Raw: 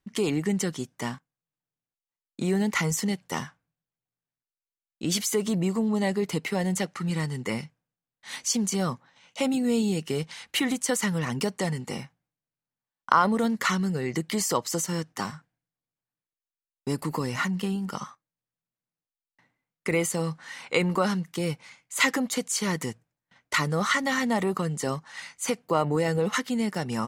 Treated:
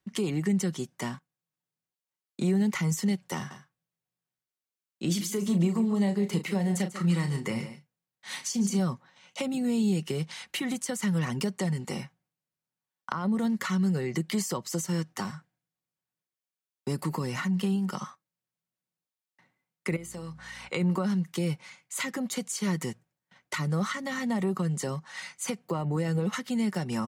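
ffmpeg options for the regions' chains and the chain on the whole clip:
-filter_complex "[0:a]asettb=1/sr,asplit=3[a][b][c];[a]atrim=end=3.364[d];[b]atrim=start=3.36:end=8.79,asetpts=PTS-STARTPTS,afade=t=in:d=0.004:c=qsin,afade=t=out:st=5.426:d=0.004:c=qsin,asplit=2[e][f];[f]adelay=35,volume=-9dB[g];[e][g]amix=inputs=2:normalize=0,atrim=end_sample=239463,aecho=1:1:143:0.188,atrim=end_sample=239463[h];[c]atrim=start=8.786[i];[d][h]acrossfade=d=0.004:c1=hsin:c2=qsin[j];[j][i]acrossfade=d=0.004:c1=qsin:c2=hsin,asettb=1/sr,asplit=3[k][l][m];[k]atrim=end=19.964[n];[l]atrim=start=19.96:end=20.69,asetpts=PTS-STARTPTS,afade=t=in:d=0.004:c=qsin,afade=t=out:st=0.726:d=0.004:c=qsin,acompressor=threshold=-40dB:ratio=3:attack=3.2:release=140:knee=1:detection=peak,aeval=exprs='val(0)+0.00282*(sin(2*PI*60*n/s)+sin(2*PI*2*60*n/s)/2+sin(2*PI*3*60*n/s)/3+sin(2*PI*4*60*n/s)/4+sin(2*PI*5*60*n/s)/5)':c=same,bandreject=f=50:t=h:w=6,bandreject=f=100:t=h:w=6,bandreject=f=150:t=h:w=6,bandreject=f=200:t=h:w=6,bandreject=f=250:t=h:w=6,bandreject=f=300:t=h:w=6,bandreject=f=350:t=h:w=6,bandreject=f=400:t=h:w=6,bandreject=f=450:t=h:w=6[o];[m]atrim=start=20.686[p];[n][o]acrossfade=d=0.004:c1=hsin:c2=qsin[q];[q][p]acrossfade=d=0.004:c1=qsin:c2=hsin,highpass=62,aecho=1:1:5.4:0.33,acrossover=split=260[r][s];[s]acompressor=threshold=-32dB:ratio=5[t];[r][t]amix=inputs=2:normalize=0"

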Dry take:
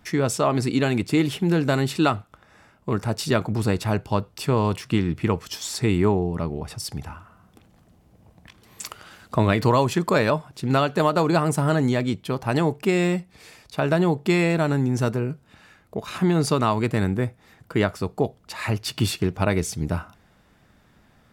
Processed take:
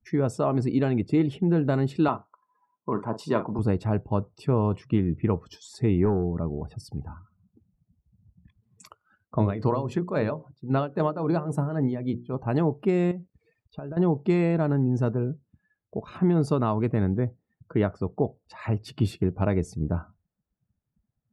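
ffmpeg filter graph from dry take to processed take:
-filter_complex "[0:a]asettb=1/sr,asplit=3[a][b][c];[a]atrim=end=2.084[d];[b]atrim=start=2.08:end=3.59,asetpts=PTS-STARTPTS,afade=t=in:d=0.004:c=qsin,afade=t=out:st=1.506:d=0.004:c=qsin,highpass=200,equalizer=f=1k:w=6.2:g=12.5,asplit=2[e][f];[f]adelay=43,volume=-11dB[g];[e][g]amix=inputs=2:normalize=0,atrim=end_sample=66591[h];[c]atrim=start=3.586[i];[d][h]acrossfade=d=0.004:c1=hsin:c2=qsin[j];[j][i]acrossfade=d=0.004:c1=qsin:c2=hsin,asettb=1/sr,asplit=3[k][l][m];[k]atrim=end=6.054[n];[l]atrim=start=6.05:end=6.71,asetpts=PTS-STARTPTS,afade=t=in:d=0.004:c=qsin,afade=t=out:st=0.656:d=0.004:c=qsin,deesser=0.95,volume=15dB,asoftclip=hard,volume=-15dB[o];[m]atrim=start=6.706[p];[n][o]acrossfade=d=0.004:c1=hsin:c2=qsin[q];[q][p]acrossfade=d=0.004:c1=qsin:c2=hsin,asettb=1/sr,asplit=3[r][s][t];[r]atrim=end=8.874[u];[s]atrim=start=8.87:end=12.34,asetpts=PTS-STARTPTS,afade=t=in:d=0.004:c=qsin,afade=t=out:st=3.466:d=0.004:c=qsin,tremolo=f=3.7:d=0.64,bandreject=f=60:t=h:w=6,bandreject=f=120:t=h:w=6,bandreject=f=180:t=h:w=6,bandreject=f=240:t=h:w=6,bandreject=f=300:t=h:w=6,bandreject=f=360:t=h:w=6,bandreject=f=420:t=h:w=6,bandreject=f=480:t=h:w=6,bandreject=f=540:t=h:w=6[v];[t]atrim=start=12.336[w];[u][v]acrossfade=d=0.004:c1=hsin:c2=qsin[x];[x][w]acrossfade=d=0.004:c1=qsin:c2=hsin,asettb=1/sr,asplit=3[y][z][aa];[y]atrim=end=13.114[ab];[z]atrim=start=13.11:end=13.97,asetpts=PTS-STARTPTS,afade=t=in:d=0.004:c=qsin,afade=t=out:st=0.856:d=0.004:c=qsin,acompressor=threshold=-29dB:ratio=12:attack=3.2:release=140:knee=1:detection=peak,aeval=exprs='val(0)*gte(abs(val(0)),0.00237)':c=same[ac];[aa]atrim=start=13.966[ad];[ab][ac]acrossfade=d=0.004:c1=hsin:c2=qsin[ae];[ae][ad]acrossfade=d=0.004:c1=qsin:c2=hsin,afftdn=nr=29:nf=-40,tiltshelf=f=1.4k:g=7.5,volume=-8.5dB"

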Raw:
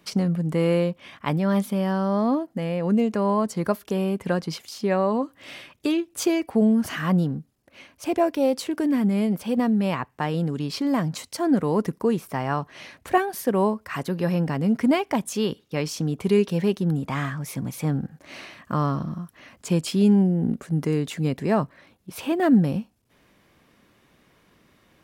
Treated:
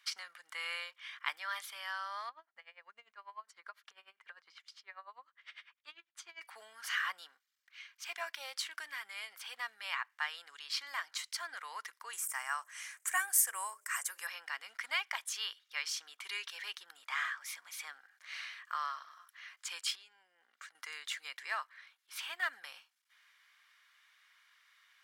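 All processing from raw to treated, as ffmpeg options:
-filter_complex "[0:a]asettb=1/sr,asplit=3[a][b][c];[a]atrim=end=2.294[d];[b]atrim=start=2.29:end=6.41,asetpts=PTS-STARTPTS,afade=t=in:d=0.004:c=qsin,afade=t=out:st=4.116:d=0.004:c=qsin,aemphasis=mode=reproduction:type=riaa,acompressor=threshold=-20dB:ratio=2.5:attack=3.2:release=140:knee=1:detection=peak,aeval=exprs='val(0)*pow(10,-23*(0.5-0.5*cos(2*PI*10*n/s))/20)':c=same[e];[c]atrim=start=6.406[f];[d][e]acrossfade=d=0.004:c1=hsin:c2=qsin[g];[g][f]acrossfade=d=0.004:c1=qsin:c2=hsin,asettb=1/sr,asplit=3[h][i][j];[h]atrim=end=7.374[k];[i]atrim=start=7.37:end=8.09,asetpts=PTS-STARTPTS,afade=t=in:d=0.004:c=qsin,afade=t=out:st=0.716:d=0.004:c=qsin,highpass=f=1.3k:p=1,equalizer=f=10k:t=o:w=0.2:g=-12.5[l];[j]atrim=start=8.086[m];[k][l]acrossfade=d=0.004:c1=hsin:c2=qsin[n];[n][m]acrossfade=d=0.004:c1=qsin:c2=hsin,asettb=1/sr,asplit=3[o][p][q];[o]atrim=end=12.134[r];[p]atrim=start=12.13:end=14.27,asetpts=PTS-STARTPTS,afade=t=in:d=0.004:c=qsin,afade=t=out:st=2.136:d=0.004:c=qsin,highshelf=f=5.7k:t=q:w=3:g=12.5,bandreject=f=60.04:t=h:w=4,bandreject=f=120.08:t=h:w=4,bandreject=f=180.12:t=h:w=4,bandreject=f=240.16:t=h:w=4,bandreject=f=300.2:t=h:w=4,bandreject=f=360.24:t=h:w=4,bandreject=f=420.28:t=h:w=4,bandreject=f=480.32:t=h:w=4,bandreject=f=540.36:t=h:w=4,bandreject=f=600.4:t=h:w=4,bandreject=f=660.44:t=h:w=4[s];[q]atrim=start=14.266[t];[r][s]acrossfade=d=0.004:c1=hsin:c2=qsin[u];[u][t]acrossfade=d=0.004:c1=qsin:c2=hsin,asettb=1/sr,asplit=3[v][w][x];[v]atrim=end=19.954[y];[w]atrim=start=19.95:end=20.75,asetpts=PTS-STARTPTS,afade=t=in:d=0.004:c=qsin,afade=t=out:st=0.796:d=0.004:c=qsin,equalizer=f=11k:w=2.1:g=-10,acompressor=threshold=-28dB:ratio=8:attack=3.2:release=140:knee=1:detection=peak[z];[x]atrim=start=20.746[aa];[y][z]acrossfade=d=0.004:c1=hsin:c2=qsin[ab];[ab][aa]acrossfade=d=0.004:c1=qsin:c2=hsin,highpass=f=1.4k:w=0.5412,highpass=f=1.4k:w=1.3066,highshelf=f=6.8k:g=-10.5,bandreject=f=2.6k:w=12"

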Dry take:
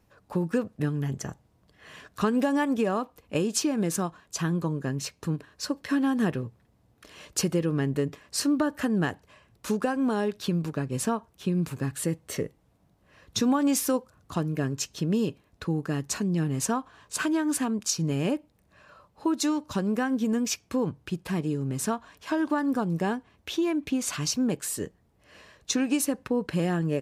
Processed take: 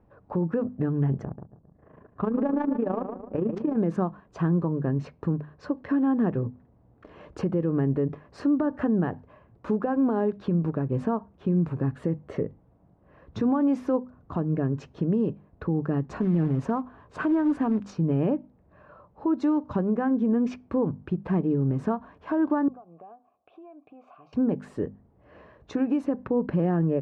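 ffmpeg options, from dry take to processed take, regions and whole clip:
-filter_complex "[0:a]asettb=1/sr,asplit=3[a][b][c];[a]atrim=end=1.244[d];[b]atrim=start=1.24:end=3.76,asetpts=PTS-STARTPTS,afade=t=in:d=0.004:c=qsin,afade=t=out:st=2.516:d=0.004:c=qsin,aecho=1:1:135|270|405|540|675:0.316|0.136|0.0585|0.0251|0.0108,atrim=end_sample=111132,adynamicsmooth=sensitivity=2.5:basefreq=870,tremolo=f=27:d=0.71[e];[c]atrim=start=3.756[f];[d][e]acrossfade=d=0.004:c1=hsin:c2=qsin[g];[g][f]acrossfade=d=0.004:c1=qsin:c2=hsin,asettb=1/sr,asplit=3[h][i][j];[h]atrim=end=16.094[k];[i]atrim=start=16.09:end=17.95,asetpts=PTS-STARTPTS,afade=t=in:d=0.004:c=qsin,afade=t=out:st=1.856:d=0.004:c=qsin,lowshelf=f=65:g=6,acrusher=bits=4:mode=log:mix=0:aa=0.000001[l];[j]atrim=start=17.946[m];[k][l]acrossfade=d=0.004:c1=hsin:c2=qsin[n];[n][m]acrossfade=d=0.004:c1=qsin:c2=hsin,asettb=1/sr,asplit=3[o][p][q];[o]atrim=end=22.684[r];[p]atrim=start=22.68:end=24.33,asetpts=PTS-STARTPTS,afade=t=in:d=0.004:c=qsin,afade=t=out:st=1.646:d=0.004:c=qsin,asplit=3[s][t][u];[s]bandpass=f=730:t=q:w=8,volume=0dB[v];[t]bandpass=f=1.09k:t=q:w=8,volume=-6dB[w];[u]bandpass=f=2.44k:t=q:w=8,volume=-9dB[x];[v][w][x]amix=inputs=3:normalize=0,acompressor=threshold=-51dB:ratio=4:attack=3.2:release=140:knee=1:detection=peak[y];[q]atrim=start=24.326[z];[r][y]acrossfade=d=0.004:c1=hsin:c2=qsin[aa];[aa][z]acrossfade=d=0.004:c1=qsin:c2=hsin,lowpass=1k,bandreject=f=50:t=h:w=6,bandreject=f=100:t=h:w=6,bandreject=f=150:t=h:w=6,bandreject=f=200:t=h:w=6,bandreject=f=250:t=h:w=6,alimiter=limit=-22.5dB:level=0:latency=1:release=137,volume=6dB"

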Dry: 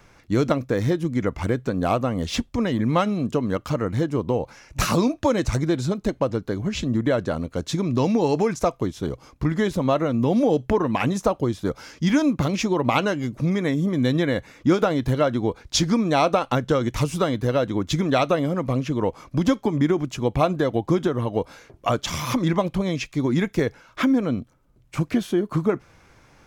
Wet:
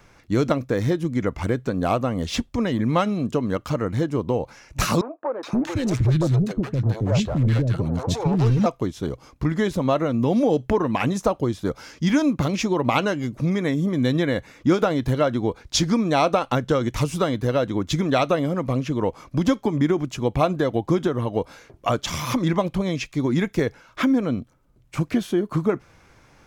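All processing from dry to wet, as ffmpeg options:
-filter_complex "[0:a]asettb=1/sr,asplit=3[a][b][c];[a]atrim=end=5.014[d];[b]atrim=start=5.01:end=8.66,asetpts=PTS-STARTPTS,afade=t=in:d=0.004:c=qsin,afade=t=out:st=3.646:d=0.004:c=qsin,equalizer=f=120:t=o:w=0.91:g=13.5,asoftclip=type=hard:threshold=-15.5dB,acrossover=split=430|1300[e][f][g];[g]adelay=420[h];[e]adelay=520[i];[i][f][h]amix=inputs=3:normalize=0,atrim=end_sample=160965[j];[c]atrim=start=8.656[k];[d][j]acrossfade=d=0.004:c1=hsin:c2=qsin[l];[l][k]acrossfade=d=0.004:c1=qsin:c2=hsin"

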